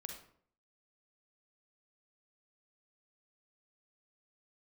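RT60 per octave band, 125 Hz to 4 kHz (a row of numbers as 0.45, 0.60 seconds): 0.65, 0.65, 0.60, 0.55, 0.45, 0.40 seconds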